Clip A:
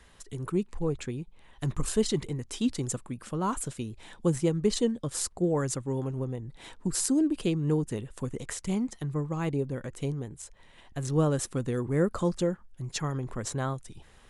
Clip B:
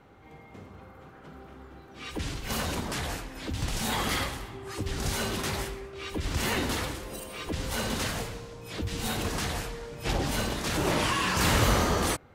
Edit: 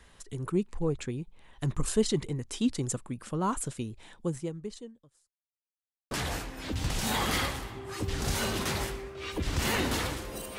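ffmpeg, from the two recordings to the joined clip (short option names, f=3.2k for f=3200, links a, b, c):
-filter_complex "[0:a]apad=whole_dur=10.58,atrim=end=10.58,asplit=2[a][b];[a]atrim=end=5.38,asetpts=PTS-STARTPTS,afade=t=out:st=3.82:d=1.56:c=qua[c];[b]atrim=start=5.38:end=6.11,asetpts=PTS-STARTPTS,volume=0[d];[1:a]atrim=start=2.89:end=7.36,asetpts=PTS-STARTPTS,afade=t=in:d=0.004:c=hsin[e];[c][d][e]concat=n=3:v=0:a=1"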